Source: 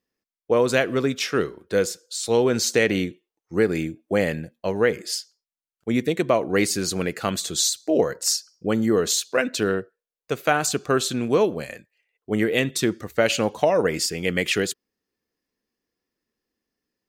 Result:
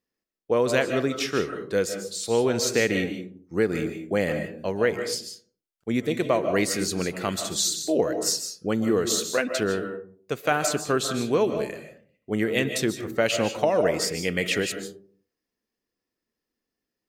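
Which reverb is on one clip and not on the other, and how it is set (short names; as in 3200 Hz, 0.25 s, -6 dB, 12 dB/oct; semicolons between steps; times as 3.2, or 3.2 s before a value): digital reverb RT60 0.49 s, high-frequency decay 0.35×, pre-delay 0.11 s, DRR 7 dB; gain -3 dB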